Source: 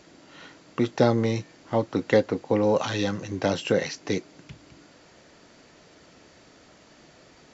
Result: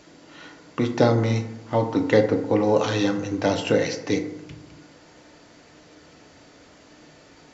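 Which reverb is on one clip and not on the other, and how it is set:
feedback delay network reverb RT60 0.95 s, low-frequency decay 1.05×, high-frequency decay 0.4×, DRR 5 dB
level +1.5 dB

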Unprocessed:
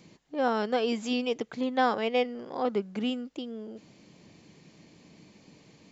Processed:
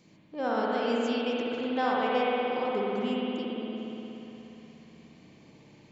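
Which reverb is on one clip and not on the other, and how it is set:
spring reverb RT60 3.6 s, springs 59 ms, chirp 55 ms, DRR −5 dB
level −5.5 dB

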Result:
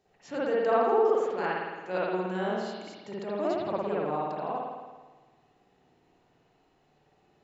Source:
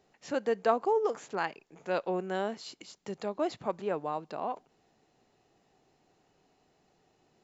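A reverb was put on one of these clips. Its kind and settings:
spring reverb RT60 1.3 s, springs 54 ms, chirp 30 ms, DRR −7.5 dB
level −5 dB

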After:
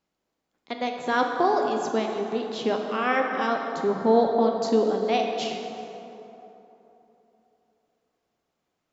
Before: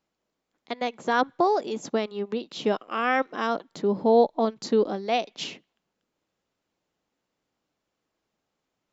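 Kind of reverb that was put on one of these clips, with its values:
dense smooth reverb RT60 3.4 s, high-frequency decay 0.5×, DRR 2 dB
level −1 dB

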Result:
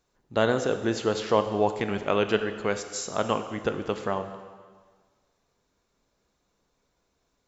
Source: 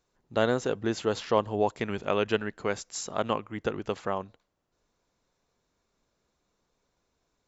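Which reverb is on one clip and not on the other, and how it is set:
dense smooth reverb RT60 1.6 s, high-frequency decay 1×, DRR 8 dB
level +2 dB

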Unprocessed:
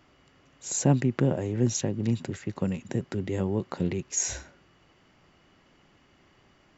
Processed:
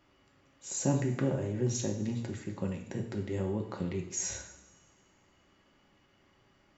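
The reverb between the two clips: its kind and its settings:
coupled-rooms reverb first 0.63 s, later 2.1 s, DRR 1.5 dB
level −7.5 dB

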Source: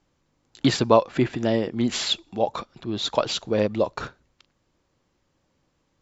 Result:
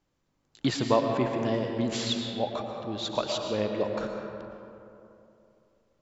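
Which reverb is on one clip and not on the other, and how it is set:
comb and all-pass reverb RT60 2.9 s, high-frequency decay 0.45×, pre-delay 75 ms, DRR 2.5 dB
level −7 dB

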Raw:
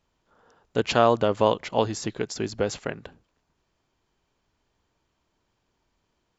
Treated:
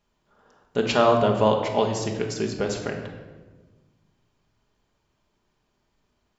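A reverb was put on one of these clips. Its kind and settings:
rectangular room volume 920 cubic metres, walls mixed, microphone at 1.3 metres
level −1 dB

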